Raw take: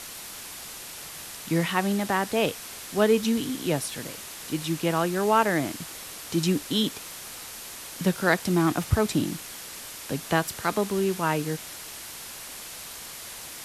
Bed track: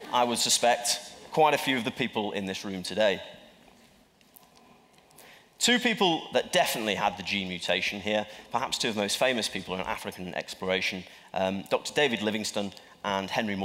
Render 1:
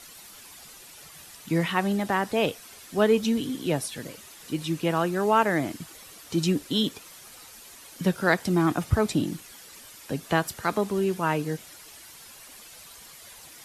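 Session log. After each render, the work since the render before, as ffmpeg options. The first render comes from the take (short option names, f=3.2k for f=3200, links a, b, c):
-af "afftdn=nr=10:nf=-40"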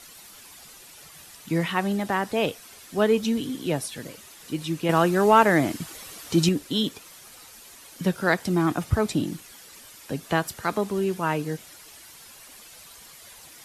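-filter_complex "[0:a]asettb=1/sr,asplit=3[a][b][c];[a]atrim=end=4.894[d];[b]atrim=start=4.89:end=6.49,asetpts=PTS-STARTPTS,afade=t=in:d=0.004:c=qsin,afade=t=out:st=1.596:d=0.004:c=qsin,acontrast=33[e];[c]atrim=start=6.486[f];[d][e]acrossfade=d=0.004:c1=hsin:c2=qsin[g];[g][f]acrossfade=d=0.004:c1=qsin:c2=hsin"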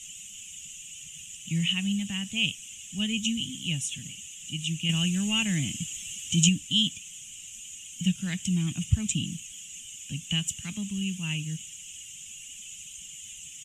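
-af "firequalizer=gain_entry='entry(190,0);entry(390,-30);entry(1400,-25);entry(2900,12);entry(4400,-19);entry(6800,14);entry(11000,-12)':delay=0.05:min_phase=1"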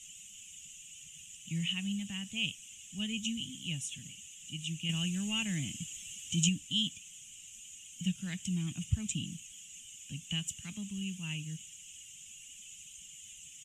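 -af "volume=-7.5dB"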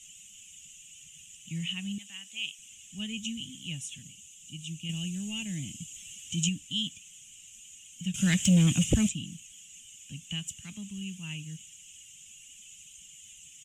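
-filter_complex "[0:a]asettb=1/sr,asplit=3[a][b][c];[a]atrim=end=1.984[d];[b]atrim=start=1.98:end=2.59,asetpts=PTS-STARTPTS,afade=t=in:d=0.004:c=qsin,afade=t=out:st=0.606:d=0.004:c=qsin,highpass=f=1.5k:p=1[e];[c]atrim=start=2.586[f];[d][e]acrossfade=d=0.004:c1=hsin:c2=qsin[g];[g][f]acrossfade=d=0.004:c1=qsin:c2=hsin,asettb=1/sr,asplit=3[h][i][j];[h]atrim=end=4.024[k];[i]atrim=start=4.02:end=5.96,asetpts=PTS-STARTPTS,afade=t=in:d=0.004:c=qsin,afade=t=out:st=1.936:d=0.004:c=qsin,equalizer=f=1.3k:t=o:w=1.3:g=-12.5[l];[j]atrim=start=5.956[m];[k][l]acrossfade=d=0.004:c1=hsin:c2=qsin[n];[n][m]acrossfade=d=0.004:c1=qsin:c2=hsin,asettb=1/sr,asplit=3[o][p][q];[o]atrim=end=8.144[r];[p]atrim=start=8.14:end=9.09,asetpts=PTS-STARTPTS,afade=t=in:d=0.004:c=qsin,afade=t=out:st=0.946:d=0.004:c=qsin,aeval=exprs='0.15*sin(PI/2*3.55*val(0)/0.15)':c=same[s];[q]atrim=start=9.086[t];[r][s]acrossfade=d=0.004:c1=hsin:c2=qsin[u];[u][t]acrossfade=d=0.004:c1=qsin:c2=hsin"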